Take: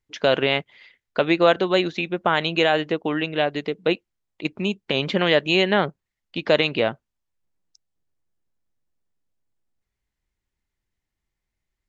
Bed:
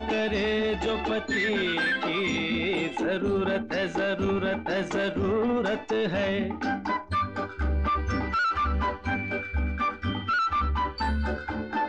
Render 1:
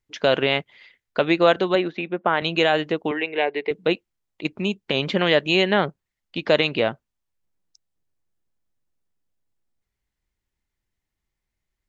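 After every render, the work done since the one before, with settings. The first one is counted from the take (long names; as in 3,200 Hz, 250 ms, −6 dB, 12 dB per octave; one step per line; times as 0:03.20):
0:01.75–0:02.42: band-pass filter 180–2,300 Hz
0:03.11–0:03.71: loudspeaker in its box 400–3,700 Hz, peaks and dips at 420 Hz +9 dB, 610 Hz −4 dB, 870 Hz +5 dB, 1,300 Hz −10 dB, 2,200 Hz +9 dB, 3,300 Hz −6 dB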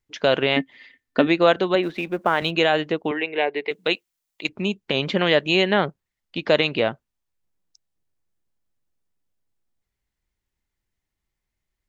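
0:00.56–0:01.27: hollow resonant body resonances 270/1,800 Hz, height 17 dB, ringing for 85 ms
0:01.83–0:02.51: mu-law and A-law mismatch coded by mu
0:03.67–0:04.49: spectral tilt +3 dB per octave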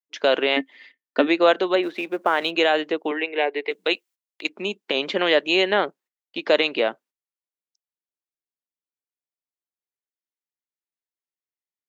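noise gate −48 dBFS, range −17 dB
high-pass filter 270 Hz 24 dB per octave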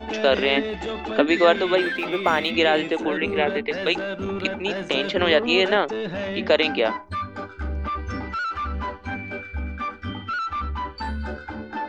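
mix in bed −2 dB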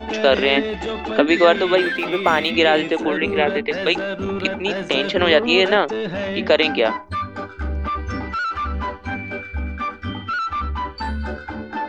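level +3.5 dB
brickwall limiter −2 dBFS, peak gain reduction 1.5 dB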